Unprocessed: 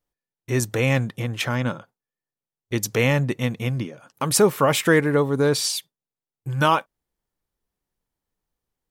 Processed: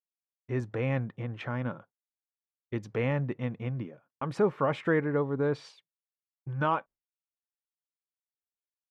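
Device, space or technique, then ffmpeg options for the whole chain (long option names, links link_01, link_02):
hearing-loss simulation: -af "lowpass=1800,agate=range=-33dB:threshold=-36dB:ratio=3:detection=peak,volume=-8.5dB"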